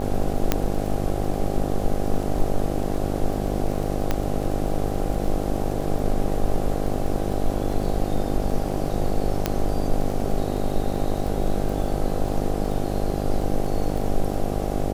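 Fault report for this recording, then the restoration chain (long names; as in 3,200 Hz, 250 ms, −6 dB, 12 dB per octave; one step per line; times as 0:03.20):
mains buzz 50 Hz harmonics 16 −27 dBFS
surface crackle 23 per second −29 dBFS
0:00.52: click −4 dBFS
0:04.11: click −9 dBFS
0:09.46: click −6 dBFS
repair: click removal
hum removal 50 Hz, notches 16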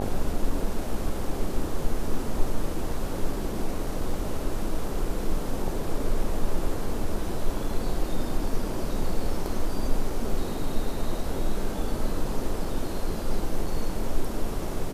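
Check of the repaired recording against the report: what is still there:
0:04.11: click
0:09.46: click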